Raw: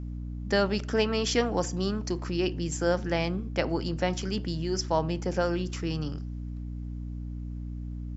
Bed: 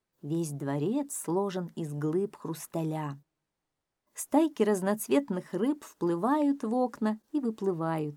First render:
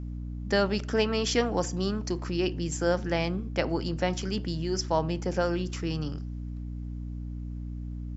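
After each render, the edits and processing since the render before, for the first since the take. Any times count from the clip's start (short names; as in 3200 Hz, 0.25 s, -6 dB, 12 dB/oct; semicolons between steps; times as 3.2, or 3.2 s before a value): nothing audible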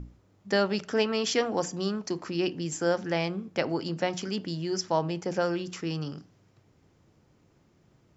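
notches 60/120/180/240/300 Hz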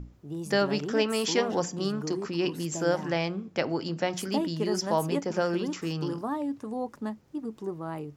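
add bed -5 dB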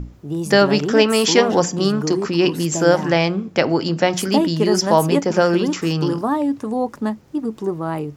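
gain +11.5 dB; limiter -1 dBFS, peak gain reduction 0.5 dB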